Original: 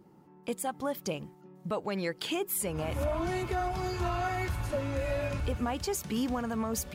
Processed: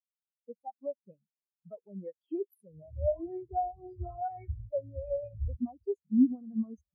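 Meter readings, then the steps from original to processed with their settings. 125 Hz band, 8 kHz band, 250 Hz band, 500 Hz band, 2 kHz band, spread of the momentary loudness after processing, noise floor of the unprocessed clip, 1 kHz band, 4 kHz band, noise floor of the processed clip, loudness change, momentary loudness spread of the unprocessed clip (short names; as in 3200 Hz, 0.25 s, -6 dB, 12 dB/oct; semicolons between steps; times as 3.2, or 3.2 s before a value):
-6.5 dB, under -40 dB, +2.0 dB, -2.5 dB, under -30 dB, 19 LU, -57 dBFS, -4.0 dB, under -40 dB, under -85 dBFS, -1.5 dB, 5 LU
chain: spectral expander 4:1; gain +6.5 dB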